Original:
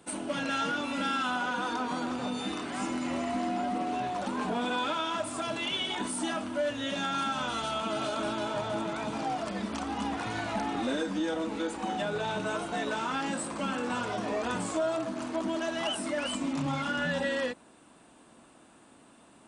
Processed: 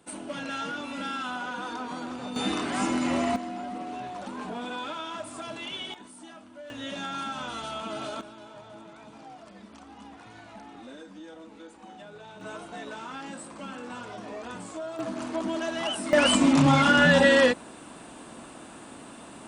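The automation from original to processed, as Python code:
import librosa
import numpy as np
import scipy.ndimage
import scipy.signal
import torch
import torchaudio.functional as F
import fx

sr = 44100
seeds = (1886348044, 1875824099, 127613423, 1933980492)

y = fx.gain(x, sr, db=fx.steps((0.0, -3.0), (2.36, 6.0), (3.36, -4.5), (5.94, -14.5), (6.7, -3.0), (8.21, -14.0), (12.41, -7.0), (14.99, 1.5), (16.13, 12.0)))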